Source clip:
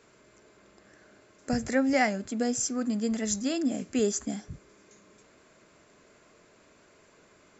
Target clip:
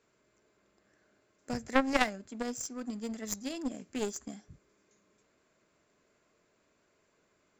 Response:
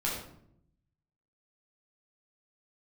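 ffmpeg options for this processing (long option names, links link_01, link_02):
-af "aeval=exprs='clip(val(0),-1,0.0708)':channel_layout=same,aeval=exprs='0.224*(cos(1*acos(clip(val(0)/0.224,-1,1)))-cos(1*PI/2))+0.0708*(cos(3*acos(clip(val(0)/0.224,-1,1)))-cos(3*PI/2))+0.00355*(cos(5*acos(clip(val(0)/0.224,-1,1)))-cos(5*PI/2))':channel_layout=same,volume=5dB"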